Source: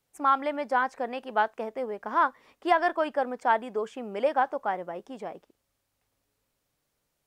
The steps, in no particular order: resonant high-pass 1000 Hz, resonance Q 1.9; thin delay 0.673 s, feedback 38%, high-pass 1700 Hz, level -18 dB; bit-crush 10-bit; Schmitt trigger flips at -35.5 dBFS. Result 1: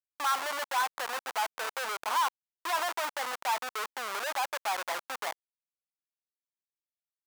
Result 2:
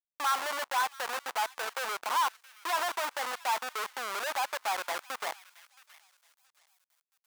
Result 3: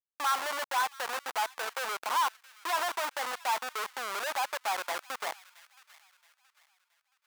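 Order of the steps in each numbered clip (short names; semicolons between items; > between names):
bit-crush > thin delay > Schmitt trigger > resonant high-pass; Schmitt trigger > thin delay > bit-crush > resonant high-pass; Schmitt trigger > resonant high-pass > bit-crush > thin delay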